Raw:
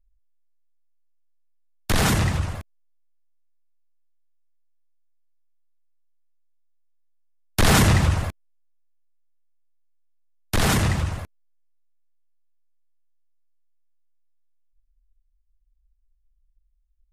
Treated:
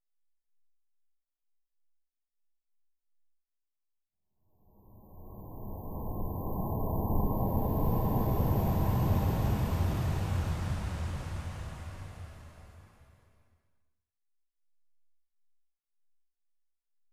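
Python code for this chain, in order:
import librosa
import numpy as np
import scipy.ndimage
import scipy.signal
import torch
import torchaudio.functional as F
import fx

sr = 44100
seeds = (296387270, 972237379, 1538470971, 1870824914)

y = fx.spec_erase(x, sr, start_s=9.34, length_s=1.61, low_hz=1100.0, high_hz=12000.0)
y = fx.paulstretch(y, sr, seeds[0], factor=5.7, window_s=1.0, from_s=9.28)
y = F.gain(torch.from_numpy(y), -6.5).numpy()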